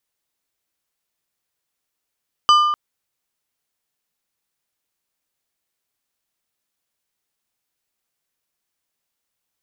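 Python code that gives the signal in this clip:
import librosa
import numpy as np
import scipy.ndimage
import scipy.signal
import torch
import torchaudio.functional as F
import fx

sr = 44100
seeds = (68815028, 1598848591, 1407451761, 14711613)

y = fx.strike_glass(sr, length_s=0.25, level_db=-8.0, body='plate', hz=1200.0, decay_s=1.4, tilt_db=7, modes=5)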